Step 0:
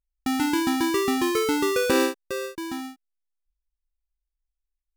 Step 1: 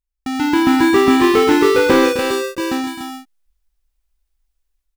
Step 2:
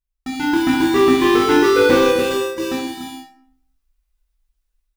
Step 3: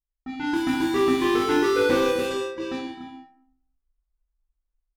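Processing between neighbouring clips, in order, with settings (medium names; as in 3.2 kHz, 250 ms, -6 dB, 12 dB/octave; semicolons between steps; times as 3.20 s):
level rider gain up to 13 dB; loudspeakers at several distances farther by 89 m -12 dB, 100 m -7 dB; slew-rate limiter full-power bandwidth 460 Hz
reverberation RT60 0.60 s, pre-delay 3 ms, DRR -3.5 dB; trim -5.5 dB
level-controlled noise filter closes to 1.2 kHz, open at -13 dBFS; trim -7.5 dB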